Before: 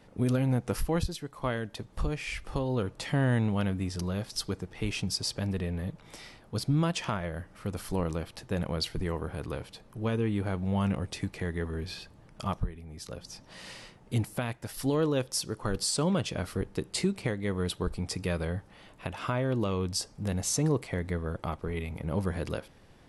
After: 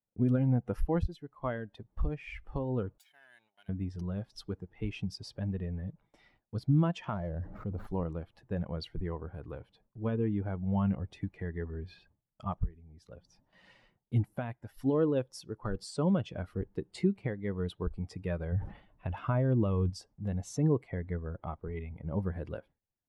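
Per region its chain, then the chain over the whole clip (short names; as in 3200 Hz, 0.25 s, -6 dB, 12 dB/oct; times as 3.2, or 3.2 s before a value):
2.98–3.69 minimum comb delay 1.3 ms + differentiator
7.13–7.87 median filter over 15 samples + bell 1600 Hz -5 dB 1.4 oct + fast leveller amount 70%
18.52–19.9 low shelf 140 Hz +7 dB + sustainer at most 73 dB/s
whole clip: per-bin expansion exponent 1.5; LPF 1000 Hz 6 dB/oct; gate with hold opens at -58 dBFS; gain +2 dB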